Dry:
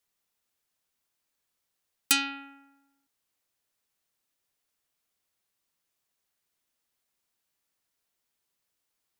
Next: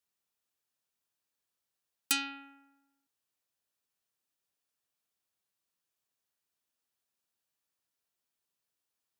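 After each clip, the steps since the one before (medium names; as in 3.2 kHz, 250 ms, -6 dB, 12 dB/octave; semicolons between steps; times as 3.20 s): high-pass 60 Hz; band-stop 2.1 kHz, Q 14; trim -6 dB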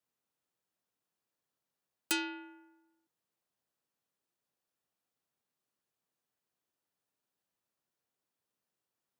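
tilt shelf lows +5 dB, about 1.4 kHz; frequency shift +50 Hz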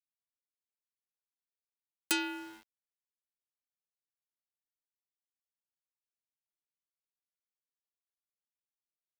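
in parallel at -2 dB: compression, threshold -41 dBFS, peak gain reduction 13 dB; on the sum: small samples zeroed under -50 dBFS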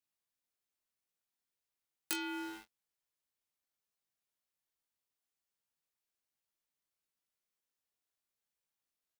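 compression 6:1, threshold -39 dBFS, peak gain reduction 13 dB; on a send: early reflections 19 ms -3 dB, 42 ms -16.5 dB; on the sum: trim +2.5 dB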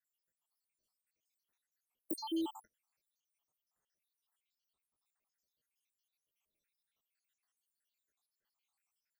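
random holes in the spectrogram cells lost 83%; trim +8.5 dB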